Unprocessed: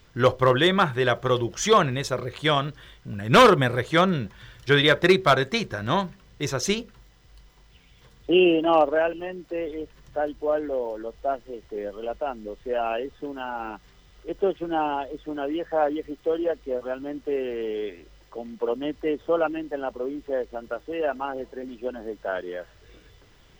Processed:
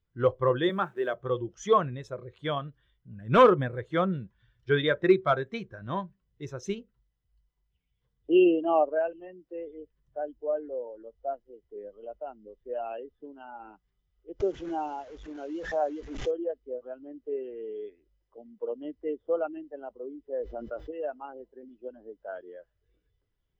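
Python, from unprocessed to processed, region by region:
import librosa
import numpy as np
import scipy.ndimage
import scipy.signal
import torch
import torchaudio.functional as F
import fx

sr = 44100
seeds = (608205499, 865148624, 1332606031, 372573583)

y = fx.chain(x, sr, fx.delta_hold(step_db=-36.5),
    fx.highpass(hz=180.0, slope=24), at=(0.69, 1.14))
y = fx.chain(y, sr, fx.delta_mod(bps=64000, step_db=-29.0),
    fx.resample_bad(factor=3, down='none', up='filtered'),
    fx.pre_swell(db_per_s=46.0), at=(14.4, 16.31))
y = fx.chain(y, sr, fx.high_shelf(hz=8600.0, db=-8.5),
    fx.env_flatten(amount_pct=70), at=(20.33, 20.91))
y = fx.dynamic_eq(y, sr, hz=4600.0, q=1.9, threshold_db=-42.0, ratio=4.0, max_db=-4)
y = fx.spectral_expand(y, sr, expansion=1.5)
y = y * 10.0 ** (-3.0 / 20.0)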